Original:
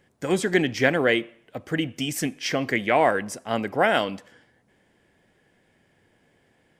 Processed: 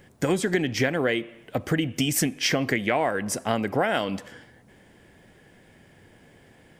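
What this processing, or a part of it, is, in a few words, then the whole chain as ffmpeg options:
ASMR close-microphone chain: -af "lowshelf=f=190:g=5,acompressor=threshold=0.0355:ratio=6,highshelf=f=12000:g=6,volume=2.51"

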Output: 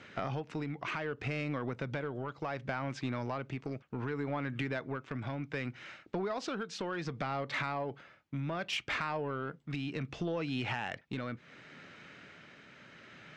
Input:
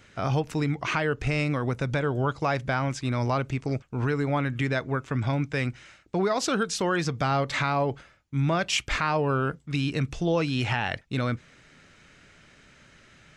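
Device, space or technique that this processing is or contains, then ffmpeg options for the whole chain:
AM radio: -af "highpass=150,lowpass=3700,acompressor=threshold=0.0178:ratio=5,asoftclip=type=tanh:threshold=0.0398,tremolo=f=0.67:d=0.28,volume=1.5"

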